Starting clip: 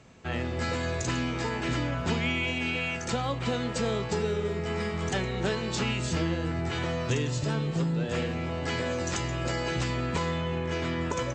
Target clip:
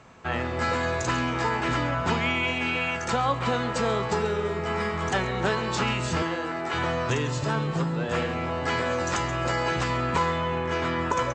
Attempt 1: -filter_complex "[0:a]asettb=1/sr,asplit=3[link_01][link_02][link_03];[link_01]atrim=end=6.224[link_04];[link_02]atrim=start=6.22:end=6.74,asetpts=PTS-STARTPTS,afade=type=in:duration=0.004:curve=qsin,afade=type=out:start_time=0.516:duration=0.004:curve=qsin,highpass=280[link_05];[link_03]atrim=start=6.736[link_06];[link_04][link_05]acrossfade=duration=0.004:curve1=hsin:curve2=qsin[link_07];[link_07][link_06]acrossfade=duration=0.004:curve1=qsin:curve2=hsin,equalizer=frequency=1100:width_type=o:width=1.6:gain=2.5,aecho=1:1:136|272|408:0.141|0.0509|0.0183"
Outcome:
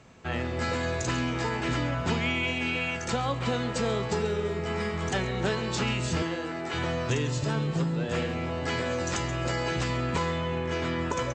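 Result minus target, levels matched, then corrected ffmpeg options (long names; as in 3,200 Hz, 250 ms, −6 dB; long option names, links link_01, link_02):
1,000 Hz band −4.0 dB
-filter_complex "[0:a]asettb=1/sr,asplit=3[link_01][link_02][link_03];[link_01]atrim=end=6.224[link_04];[link_02]atrim=start=6.22:end=6.74,asetpts=PTS-STARTPTS,afade=type=in:duration=0.004:curve=qsin,afade=type=out:start_time=0.516:duration=0.004:curve=qsin,highpass=280[link_05];[link_03]atrim=start=6.736[link_06];[link_04][link_05]acrossfade=duration=0.004:curve1=hsin:curve2=qsin[link_07];[link_07][link_06]acrossfade=duration=0.004:curve1=qsin:curve2=hsin,equalizer=frequency=1100:width_type=o:width=1.6:gain=10,aecho=1:1:136|272|408:0.141|0.0509|0.0183"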